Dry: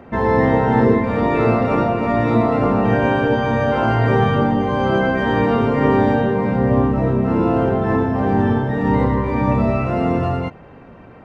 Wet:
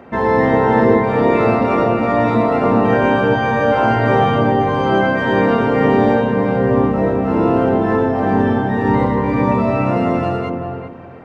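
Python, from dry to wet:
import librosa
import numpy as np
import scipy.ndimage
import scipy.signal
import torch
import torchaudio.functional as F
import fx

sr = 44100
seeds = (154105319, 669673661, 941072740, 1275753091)

y = fx.low_shelf(x, sr, hz=120.0, db=-11.0)
y = fx.echo_filtered(y, sr, ms=387, feedback_pct=25, hz=990.0, wet_db=-4.0)
y = F.gain(torch.from_numpy(y), 2.5).numpy()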